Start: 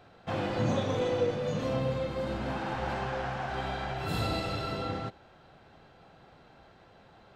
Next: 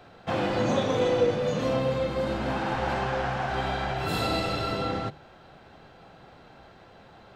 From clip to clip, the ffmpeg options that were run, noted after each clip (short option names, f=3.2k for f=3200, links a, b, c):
-filter_complex "[0:a]bandreject=f=50:t=h:w=6,bandreject=f=100:t=h:w=6,bandreject=f=150:t=h:w=6,acrossover=split=220[a][b];[a]alimiter=level_in=11dB:limit=-24dB:level=0:latency=1,volume=-11dB[c];[c][b]amix=inputs=2:normalize=0,volume=5.5dB"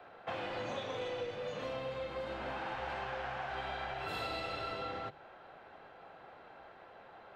-filter_complex "[0:a]acrossover=split=380 2900:gain=0.2 1 0.158[a][b][c];[a][b][c]amix=inputs=3:normalize=0,acrossover=split=120|2600[d][e][f];[e]acompressor=threshold=-38dB:ratio=5[g];[d][g][f]amix=inputs=3:normalize=0,volume=-1dB"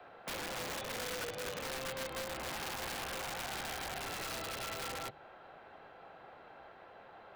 -filter_complex "[0:a]acrossover=split=380|1700[a][b][c];[c]alimiter=level_in=17dB:limit=-24dB:level=0:latency=1:release=65,volume=-17dB[d];[a][b][d]amix=inputs=3:normalize=0,aeval=exprs='(mod(53.1*val(0)+1,2)-1)/53.1':c=same"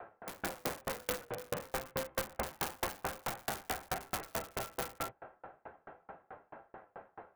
-filter_complex "[0:a]flanger=delay=8.7:depth=8.5:regen=-31:speed=0.3:shape=triangular,acrossover=split=130|2100[a][b][c];[c]acrusher=bits=5:mix=0:aa=0.000001[d];[a][b][d]amix=inputs=3:normalize=0,aeval=exprs='val(0)*pow(10,-36*if(lt(mod(4.6*n/s,1),2*abs(4.6)/1000),1-mod(4.6*n/s,1)/(2*abs(4.6)/1000),(mod(4.6*n/s,1)-2*abs(4.6)/1000)/(1-2*abs(4.6)/1000))/20)':c=same,volume=14.5dB"